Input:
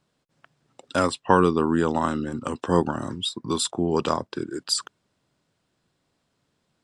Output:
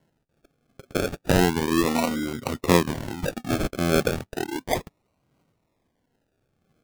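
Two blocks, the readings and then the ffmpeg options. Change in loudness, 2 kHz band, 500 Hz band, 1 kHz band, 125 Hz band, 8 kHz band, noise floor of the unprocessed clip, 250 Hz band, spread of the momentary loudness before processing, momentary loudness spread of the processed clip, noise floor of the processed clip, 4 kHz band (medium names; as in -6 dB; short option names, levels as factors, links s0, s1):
-0.5 dB, +3.5 dB, -0.5 dB, -3.5 dB, +2.5 dB, -1.5 dB, -74 dBFS, 0.0 dB, 9 LU, 10 LU, -74 dBFS, -2.5 dB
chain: -af "alimiter=limit=0.266:level=0:latency=1:release=258,aphaser=in_gain=1:out_gain=1:delay=4.2:decay=0.49:speed=0.74:type=sinusoidal,acrusher=samples=36:mix=1:aa=0.000001:lfo=1:lforange=21.6:lforate=0.33"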